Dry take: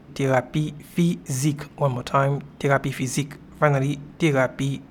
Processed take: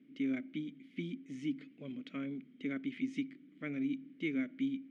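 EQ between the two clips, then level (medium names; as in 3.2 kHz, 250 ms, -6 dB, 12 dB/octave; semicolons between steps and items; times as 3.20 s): vowel filter i; high-pass 160 Hz 12 dB/octave; distance through air 57 m; -4.0 dB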